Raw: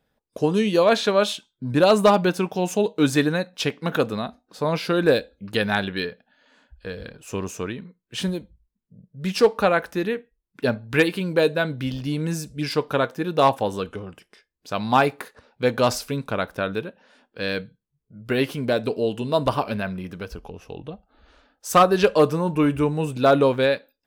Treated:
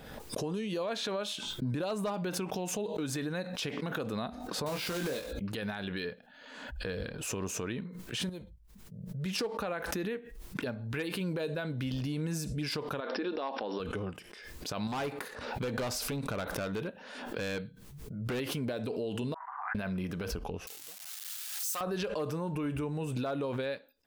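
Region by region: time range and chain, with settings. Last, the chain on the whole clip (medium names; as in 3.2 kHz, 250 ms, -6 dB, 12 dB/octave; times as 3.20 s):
4.66–5.33 s: block-companded coder 3-bit + doubling 22 ms -5 dB
8.29–9.26 s: compression 10:1, threshold -30 dBFS + peaking EQ 270 Hz -10 dB 0.48 oct
13.00–13.80 s: brick-wall FIR band-pass 200–5700 Hz + compression 3:1, threshold -23 dBFS
14.87–18.40 s: compression 2:1, threshold -34 dBFS + hard clipper -30.5 dBFS
19.34–19.75 s: Chebyshev band-pass 750–2000 Hz, order 5 + differentiator
20.67–21.81 s: zero-crossing glitches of -19 dBFS + low-pass 2.2 kHz 6 dB/octave + differentiator
whole clip: compression 6:1, threshold -29 dBFS; peak limiter -26.5 dBFS; swell ahead of each attack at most 41 dB/s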